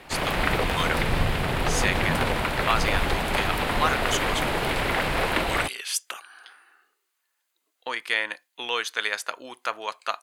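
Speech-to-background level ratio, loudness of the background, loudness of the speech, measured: -4.5 dB, -25.5 LUFS, -30.0 LUFS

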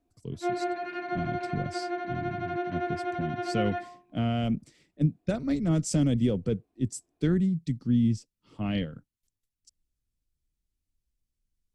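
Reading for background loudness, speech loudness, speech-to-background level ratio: -33.5 LUFS, -30.0 LUFS, 3.5 dB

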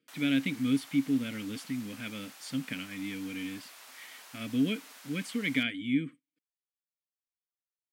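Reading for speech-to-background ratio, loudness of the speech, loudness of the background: 16.5 dB, -33.0 LUFS, -49.5 LUFS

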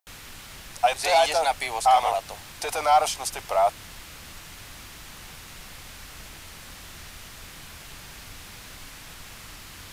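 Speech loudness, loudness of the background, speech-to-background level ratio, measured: -23.0 LUFS, -41.5 LUFS, 18.5 dB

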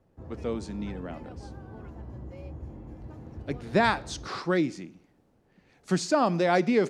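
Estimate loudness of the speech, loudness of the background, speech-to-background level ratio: -28.0 LUFS, -43.5 LUFS, 15.5 dB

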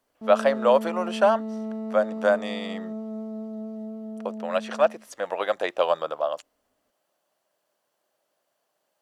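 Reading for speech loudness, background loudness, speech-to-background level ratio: -25.0 LUFS, -34.0 LUFS, 9.0 dB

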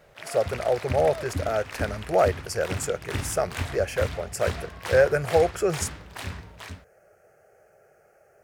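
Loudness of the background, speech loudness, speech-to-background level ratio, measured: -35.0 LUFS, -26.0 LUFS, 9.0 dB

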